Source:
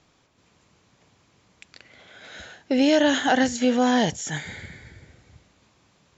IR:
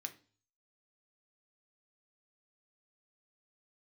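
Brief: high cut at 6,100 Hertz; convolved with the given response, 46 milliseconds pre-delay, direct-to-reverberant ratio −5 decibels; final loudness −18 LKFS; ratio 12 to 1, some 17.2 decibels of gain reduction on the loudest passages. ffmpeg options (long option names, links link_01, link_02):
-filter_complex "[0:a]lowpass=6100,acompressor=threshold=-33dB:ratio=12,asplit=2[link_01][link_02];[1:a]atrim=start_sample=2205,adelay=46[link_03];[link_02][link_03]afir=irnorm=-1:irlink=0,volume=7.5dB[link_04];[link_01][link_04]amix=inputs=2:normalize=0,volume=16dB"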